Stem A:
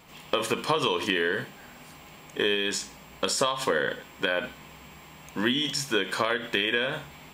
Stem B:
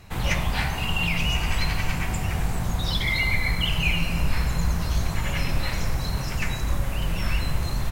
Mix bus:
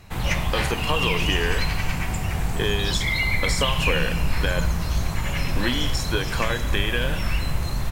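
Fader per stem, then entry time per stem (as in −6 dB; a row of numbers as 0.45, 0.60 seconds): −0.5, +0.5 decibels; 0.20, 0.00 seconds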